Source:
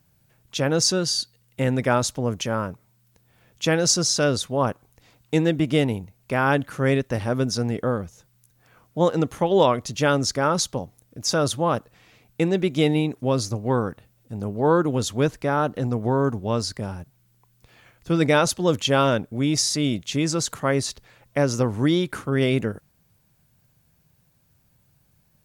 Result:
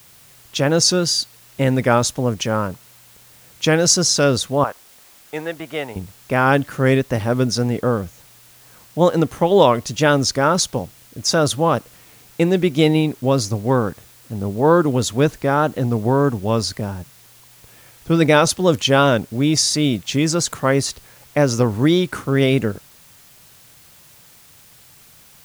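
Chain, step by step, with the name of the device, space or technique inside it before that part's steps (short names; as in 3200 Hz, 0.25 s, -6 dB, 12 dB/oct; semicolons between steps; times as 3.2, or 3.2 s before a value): 4.64–5.96 three-band isolator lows -20 dB, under 590 Hz, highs -12 dB, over 2300 Hz; plain cassette with noise reduction switched in (mismatched tape noise reduction decoder only; wow and flutter; white noise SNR 29 dB); gain +5 dB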